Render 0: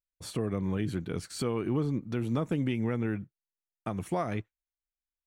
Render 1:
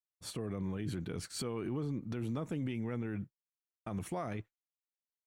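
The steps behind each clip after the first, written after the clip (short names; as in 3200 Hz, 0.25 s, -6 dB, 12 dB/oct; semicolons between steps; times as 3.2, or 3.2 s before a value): expander -39 dBFS; limiter -29 dBFS, peak gain reduction 8.5 dB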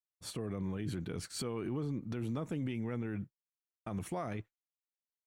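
nothing audible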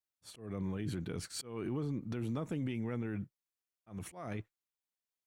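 auto swell 0.202 s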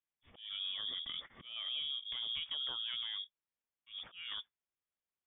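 inverted band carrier 3500 Hz; air absorption 160 m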